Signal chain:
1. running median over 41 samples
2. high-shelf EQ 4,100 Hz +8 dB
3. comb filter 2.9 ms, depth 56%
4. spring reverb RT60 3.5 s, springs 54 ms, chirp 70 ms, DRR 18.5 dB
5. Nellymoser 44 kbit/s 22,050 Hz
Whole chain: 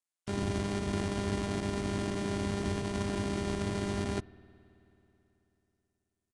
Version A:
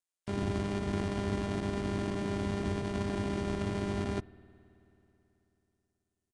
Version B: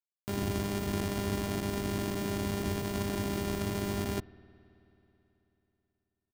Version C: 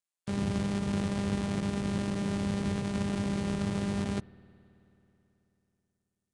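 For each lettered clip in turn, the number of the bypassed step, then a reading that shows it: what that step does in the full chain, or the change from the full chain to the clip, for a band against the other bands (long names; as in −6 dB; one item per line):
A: 2, 8 kHz band −6.0 dB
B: 5, 8 kHz band +2.5 dB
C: 3, 250 Hz band +5.0 dB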